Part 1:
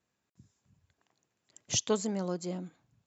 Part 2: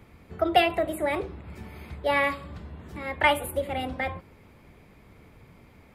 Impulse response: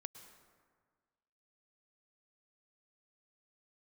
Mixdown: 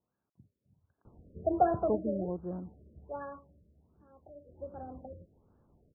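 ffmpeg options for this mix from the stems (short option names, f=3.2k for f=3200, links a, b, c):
-filter_complex "[0:a]bandreject=f=3.6k:w=7.1,volume=-1.5dB[a];[1:a]adynamicsmooth=sensitivity=5.5:basefreq=2.1k,adelay=1050,volume=7.5dB,afade=t=out:st=1.87:d=0.46:silence=0.316228,afade=t=out:st=3.14:d=0.48:silence=0.316228,afade=t=in:st=4.43:d=0.28:silence=0.266073[b];[a][b]amix=inputs=2:normalize=0,highshelf=f=2.6k:g=-10.5,afftfilt=real='re*lt(b*sr/1024,610*pow(1800/610,0.5+0.5*sin(2*PI*1.3*pts/sr)))':imag='im*lt(b*sr/1024,610*pow(1800/610,0.5+0.5*sin(2*PI*1.3*pts/sr)))':win_size=1024:overlap=0.75"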